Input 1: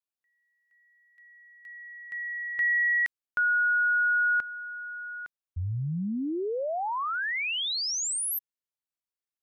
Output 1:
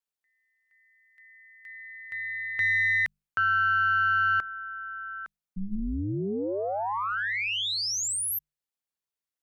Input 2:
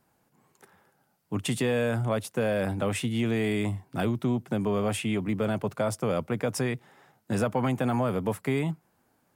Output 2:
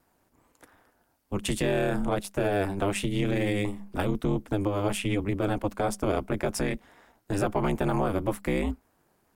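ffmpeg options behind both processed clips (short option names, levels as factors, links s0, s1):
-af "aeval=exprs='0.188*(cos(1*acos(clip(val(0)/0.188,-1,1)))-cos(1*PI/2))+0.0075*(cos(4*acos(clip(val(0)/0.188,-1,1)))-cos(4*PI/2))+0.00299*(cos(5*acos(clip(val(0)/0.188,-1,1)))-cos(5*PI/2))':c=same,bandreject=f=50:t=h:w=6,bandreject=f=100:t=h:w=6,aeval=exprs='val(0)*sin(2*PI*100*n/s)':c=same,volume=1.41"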